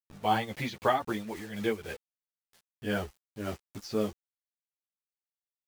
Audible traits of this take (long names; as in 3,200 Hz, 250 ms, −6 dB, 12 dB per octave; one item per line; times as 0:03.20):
a quantiser's noise floor 8 bits, dither none
tremolo triangle 3.8 Hz, depth 70%
a shimmering, thickened sound